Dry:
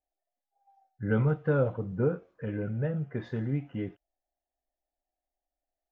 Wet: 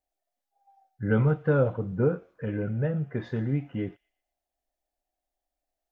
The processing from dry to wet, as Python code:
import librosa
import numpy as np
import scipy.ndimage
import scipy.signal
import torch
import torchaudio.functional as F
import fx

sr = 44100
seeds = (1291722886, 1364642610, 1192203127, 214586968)

y = fx.echo_wet_highpass(x, sr, ms=120, feedback_pct=36, hz=2700.0, wet_db=-18.0)
y = y * librosa.db_to_amplitude(3.0)